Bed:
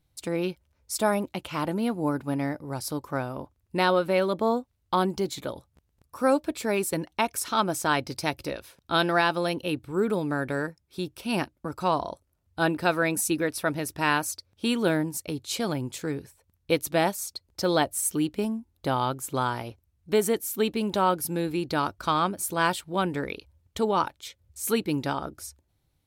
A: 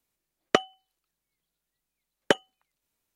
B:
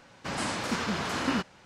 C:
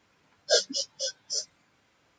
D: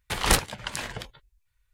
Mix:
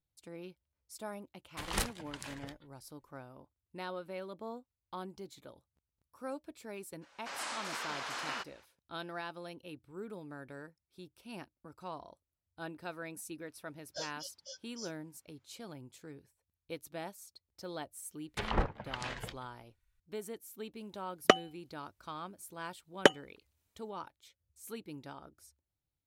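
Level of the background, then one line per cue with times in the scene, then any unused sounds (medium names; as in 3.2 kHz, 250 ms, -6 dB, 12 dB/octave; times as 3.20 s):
bed -19 dB
1.47 s: add D -13 dB
7.01 s: add B -6.5 dB, fades 0.02 s + high-pass 680 Hz
13.46 s: add C -16.5 dB + peak limiter -13 dBFS
18.27 s: add D -6.5 dB + low-pass that closes with the level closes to 1.1 kHz, closed at -23 dBFS
20.75 s: add A -1 dB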